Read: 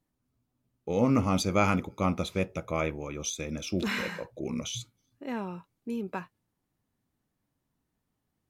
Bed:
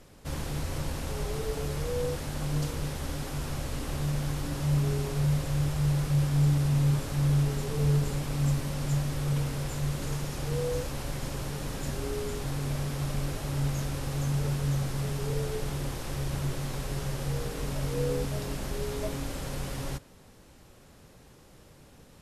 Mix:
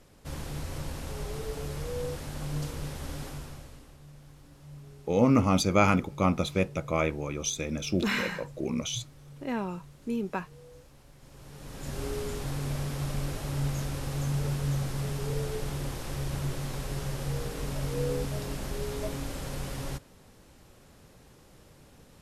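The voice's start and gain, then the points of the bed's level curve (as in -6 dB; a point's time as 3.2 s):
4.20 s, +2.5 dB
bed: 3.26 s -3.5 dB
3.98 s -21 dB
11.16 s -21 dB
12.01 s -1 dB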